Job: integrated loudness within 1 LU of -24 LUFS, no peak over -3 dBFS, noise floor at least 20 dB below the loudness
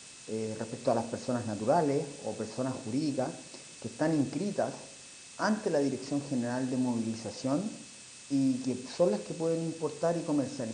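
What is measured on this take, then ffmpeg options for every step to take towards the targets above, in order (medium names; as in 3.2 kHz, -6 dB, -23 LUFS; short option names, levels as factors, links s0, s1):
steady tone 2.6 kHz; tone level -59 dBFS; noise floor -50 dBFS; noise floor target -52 dBFS; loudness -32.0 LUFS; peak level -13.5 dBFS; loudness target -24.0 LUFS
-> -af "bandreject=f=2600:w=30"
-af "afftdn=nr=6:nf=-50"
-af "volume=2.51"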